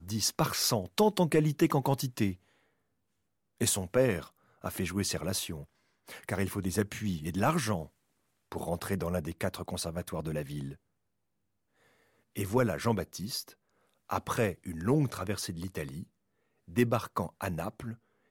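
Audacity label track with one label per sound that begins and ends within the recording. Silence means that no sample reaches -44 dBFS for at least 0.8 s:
3.610000	10.750000	sound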